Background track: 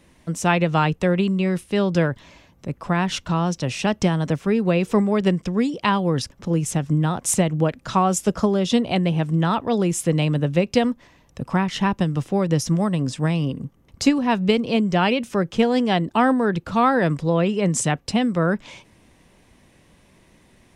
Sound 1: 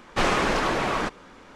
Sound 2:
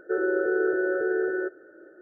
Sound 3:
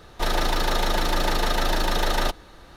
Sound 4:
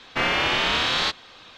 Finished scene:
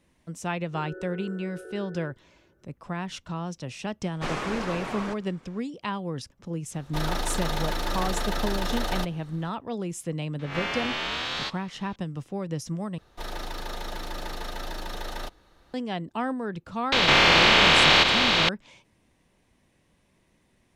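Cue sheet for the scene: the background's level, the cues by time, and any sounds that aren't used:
background track -11.5 dB
0.64 add 2 -16.5 dB
4.05 add 1 -9 dB
6.74 add 3 -6 dB
10.39 add 4 -9 dB + spectral swells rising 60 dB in 0.45 s
12.98 replace with 3 -12 dB
16.92 add 4 + per-bin compression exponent 0.2

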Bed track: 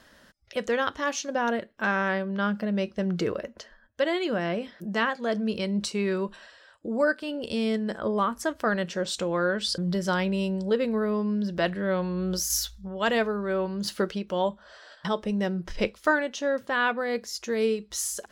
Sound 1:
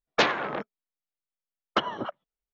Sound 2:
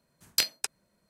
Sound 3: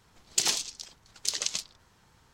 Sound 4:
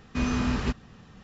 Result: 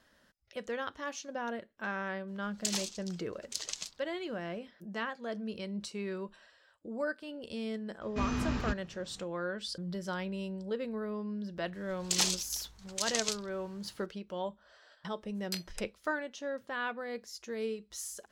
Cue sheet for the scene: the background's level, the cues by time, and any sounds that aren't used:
bed track -11 dB
2.27 add 3 -8.5 dB, fades 0.02 s
8.01 add 4 -6.5 dB
11.73 add 3 -1 dB + limiter -13.5 dBFS
15.14 add 2 -12.5 dB + high shelf 11000 Hz -5 dB
not used: 1

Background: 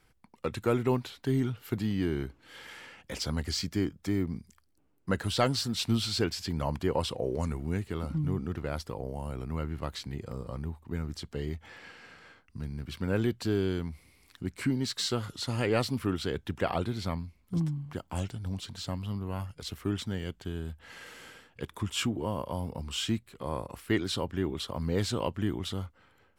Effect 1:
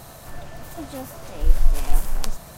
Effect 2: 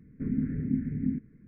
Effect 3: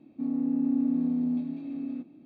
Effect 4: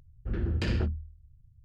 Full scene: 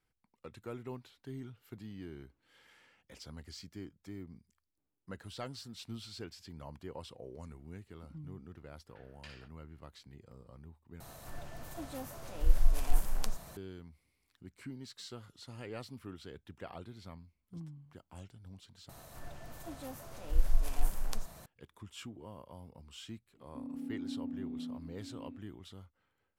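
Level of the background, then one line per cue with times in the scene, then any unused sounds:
background -16.5 dB
8.62 add 4 -13.5 dB + HPF 1200 Hz
11 replace with 1 -9 dB
18.89 replace with 1 -11 dB
23.36 add 3 -14 dB
not used: 2

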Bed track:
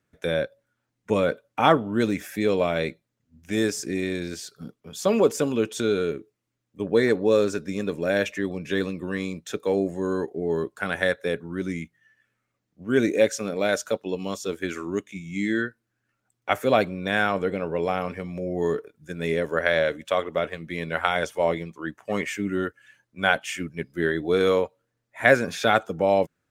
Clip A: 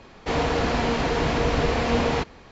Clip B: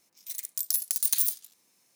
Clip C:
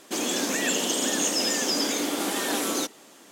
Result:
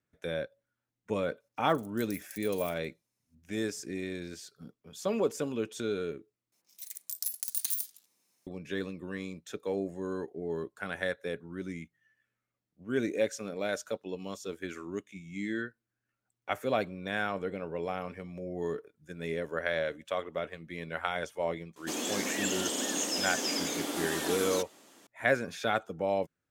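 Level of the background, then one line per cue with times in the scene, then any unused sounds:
bed track -9.5 dB
1.4 add B -16 dB + level quantiser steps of 10 dB
6.52 replace with B -7 dB
21.76 add C -7 dB
not used: A

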